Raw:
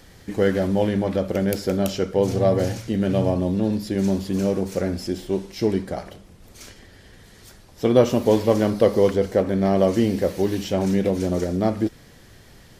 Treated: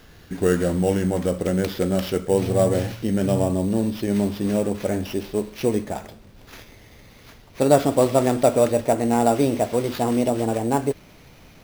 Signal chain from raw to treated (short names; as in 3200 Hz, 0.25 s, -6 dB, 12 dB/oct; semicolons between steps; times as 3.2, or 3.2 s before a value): speed glide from 90% -> 130%; sample-rate reducer 8400 Hz, jitter 0%